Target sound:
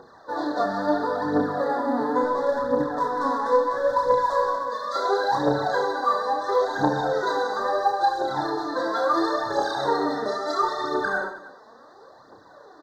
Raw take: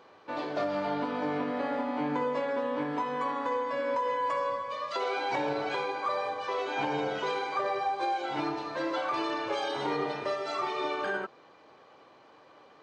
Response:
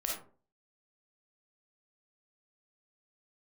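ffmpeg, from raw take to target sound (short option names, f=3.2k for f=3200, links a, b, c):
-filter_complex "[0:a]asettb=1/sr,asplit=3[a][b][c];[a]atrim=end=2.234[d];[b]atrim=start=2.23:end=4.67,asetpts=PTS-STARTPTS,afade=t=in:d=0.004:c=qsin,afade=t=out:st=2.436:d=0.004:c=qsin,adynamicsmooth=sensitivity=4.5:basefreq=750[e];[c]atrim=start=4.666[f];[d][e]acrossfade=d=0.004:c1=hsin:c2=qsin[g];[g][f]acrossfade=d=0.004:c1=qsin:c2=hsin,aphaser=in_gain=1:out_gain=1:delay=4.8:decay=0.7:speed=0.73:type=triangular,asuperstop=centerf=2600:order=12:qfactor=1.5,aecho=1:1:30|72|130.8|213.1|328.4:0.631|0.398|0.251|0.158|0.1,volume=2.5dB"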